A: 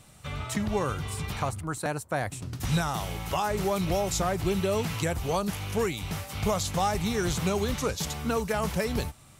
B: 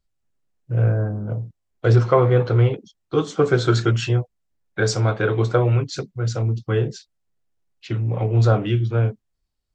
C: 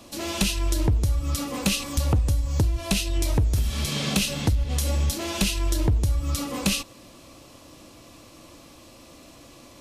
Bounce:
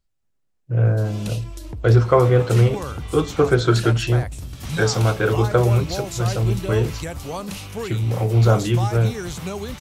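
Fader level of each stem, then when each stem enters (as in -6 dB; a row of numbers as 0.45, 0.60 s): -2.0, +1.0, -11.5 dB; 2.00, 0.00, 0.85 s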